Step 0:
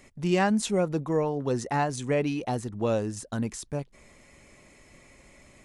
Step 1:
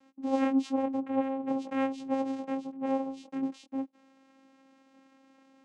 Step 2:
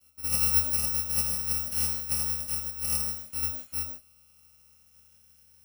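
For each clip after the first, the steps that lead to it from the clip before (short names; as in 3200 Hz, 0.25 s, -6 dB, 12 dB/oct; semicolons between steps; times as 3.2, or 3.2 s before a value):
chorus 0.47 Hz, delay 18 ms, depth 7.8 ms; vocoder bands 4, saw 268 Hz
FFT order left unsorted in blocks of 128 samples; non-linear reverb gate 0.18 s flat, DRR 4 dB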